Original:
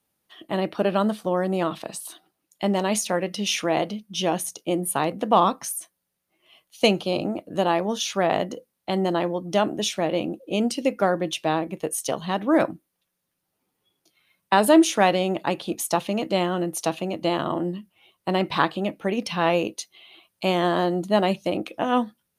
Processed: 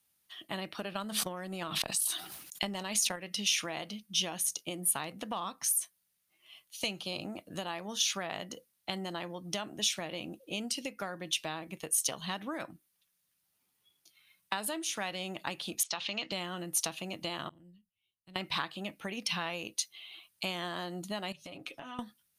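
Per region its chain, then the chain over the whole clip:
0:00.93–0:03.16: transient designer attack +9 dB, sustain −6 dB + level that may fall only so fast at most 45 dB per second
0:15.83–0:16.32: spectral tilt +3 dB per octave + downward compressor 2 to 1, threshold −26 dBFS + low-pass filter 4,600 Hz 24 dB per octave
0:17.49–0:18.36: guitar amp tone stack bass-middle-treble 10-0-1 + tube saturation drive 31 dB, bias 0.55
0:21.32–0:21.99: high-shelf EQ 7,600 Hz −8 dB + comb filter 7.2 ms, depth 63% + downward compressor 12 to 1, threshold −33 dBFS
whole clip: downward compressor 6 to 1, threshold −26 dBFS; guitar amp tone stack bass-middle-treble 5-5-5; level +8.5 dB

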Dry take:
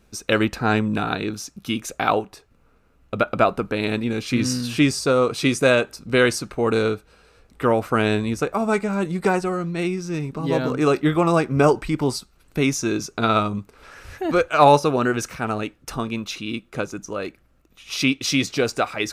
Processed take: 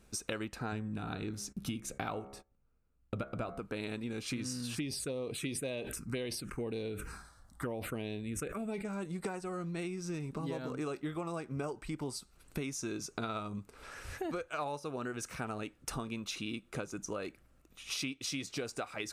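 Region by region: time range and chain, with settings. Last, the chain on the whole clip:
0:00.72–0:03.59: hum removal 68.4 Hz, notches 33 + noise gate −49 dBFS, range −20 dB + low-shelf EQ 210 Hz +11.5 dB
0:04.75–0:08.85: phaser swept by the level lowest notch 410 Hz, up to 1,400 Hz, full sweep at −15.5 dBFS + level that may fall only so fast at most 82 dB per second
whole clip: parametric band 8,800 Hz +6.5 dB 0.68 octaves; downward compressor 10 to 1, threshold −30 dBFS; level −5 dB

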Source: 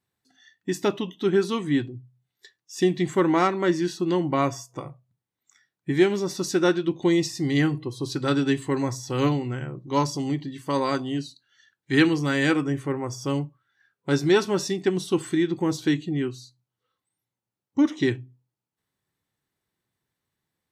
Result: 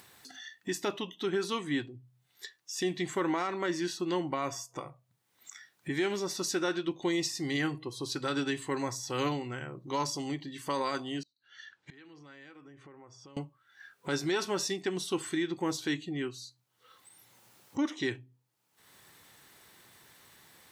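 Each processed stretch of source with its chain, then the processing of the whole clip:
0:11.23–0:13.37: downward compressor 8 to 1, threshold −32 dBFS + gate with flip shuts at −39 dBFS, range −29 dB + high-frequency loss of the air 120 metres
whole clip: low-shelf EQ 360 Hz −12 dB; brickwall limiter −20 dBFS; upward compression, threshold −34 dBFS; level −1.5 dB

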